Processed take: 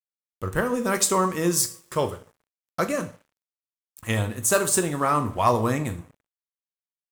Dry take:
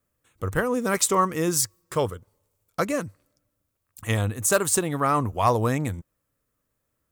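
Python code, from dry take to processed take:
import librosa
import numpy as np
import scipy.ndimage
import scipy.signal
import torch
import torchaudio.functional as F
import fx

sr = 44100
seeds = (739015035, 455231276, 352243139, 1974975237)

y = fx.rev_double_slope(x, sr, seeds[0], early_s=0.39, late_s=1.6, knee_db=-20, drr_db=6.0)
y = np.sign(y) * np.maximum(np.abs(y) - 10.0 ** (-48.5 / 20.0), 0.0)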